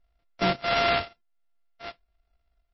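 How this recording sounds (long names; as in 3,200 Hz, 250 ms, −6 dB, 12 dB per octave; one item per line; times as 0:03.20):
a buzz of ramps at a fixed pitch in blocks of 64 samples
tremolo triangle 1.4 Hz, depth 40%
aliases and images of a low sample rate 6,000 Hz, jitter 20%
MP3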